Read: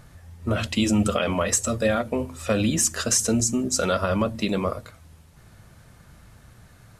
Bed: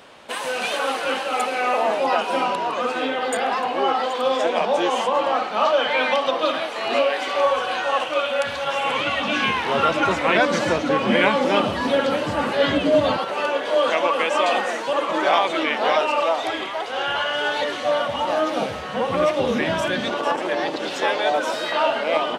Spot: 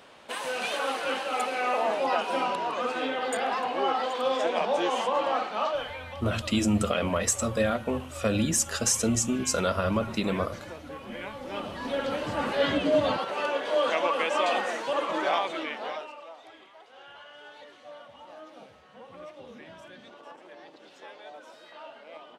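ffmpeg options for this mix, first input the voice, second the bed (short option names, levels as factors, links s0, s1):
-filter_complex "[0:a]adelay=5750,volume=0.668[s0];[1:a]volume=2.82,afade=t=out:st=5.42:d=0.58:silence=0.177828,afade=t=in:st=11.39:d=1.11:silence=0.177828,afade=t=out:st=15.05:d=1.12:silence=0.112202[s1];[s0][s1]amix=inputs=2:normalize=0"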